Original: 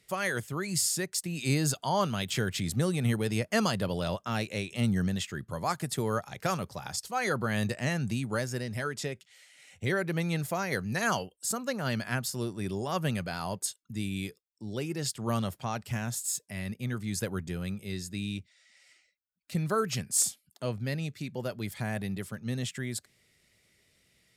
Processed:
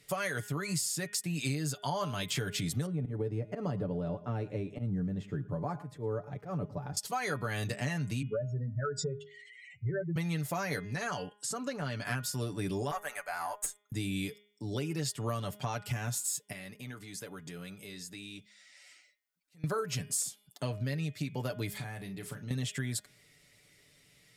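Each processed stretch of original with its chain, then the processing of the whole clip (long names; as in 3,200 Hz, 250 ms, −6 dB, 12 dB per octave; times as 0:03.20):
0:02.86–0:06.97: drawn EQ curve 410 Hz 0 dB, 2,300 Hz −17 dB, 3,300 Hz −22 dB, 9,600 Hz −28 dB + volume swells 158 ms + single-tap delay 113 ms −21.5 dB
0:08.22–0:10.16: expanding power law on the bin magnitudes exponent 3.2 + high-pass filter 100 Hz 24 dB per octave + mains-hum notches 50/100/150/200/250 Hz
0:10.79–0:12.05: Bessel low-pass filter 8,200 Hz, order 4 + downward compressor 2.5 to 1, threshold −38 dBFS
0:12.91–0:13.92: Chebyshev high-pass filter 730 Hz, order 3 + flat-topped bell 3,800 Hz −12 dB 1.2 octaves + tube saturation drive 22 dB, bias 0.45
0:16.52–0:19.64: parametric band 64 Hz −13 dB 2.8 octaves + downward compressor 3 to 1, threshold −47 dBFS + volume swells 516 ms
0:21.70–0:22.51: downward compressor, threshold −42 dBFS + double-tracking delay 36 ms −9.5 dB
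whole clip: comb filter 6.9 ms, depth 62%; hum removal 206.7 Hz, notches 17; downward compressor, threshold −34 dBFS; level +3 dB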